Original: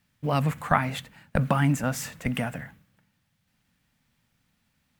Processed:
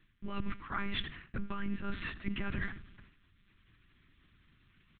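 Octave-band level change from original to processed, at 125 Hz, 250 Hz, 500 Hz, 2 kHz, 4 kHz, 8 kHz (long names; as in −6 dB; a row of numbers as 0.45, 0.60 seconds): −17.0 dB, −10.5 dB, −17.0 dB, −8.0 dB, −4.0 dB, below −40 dB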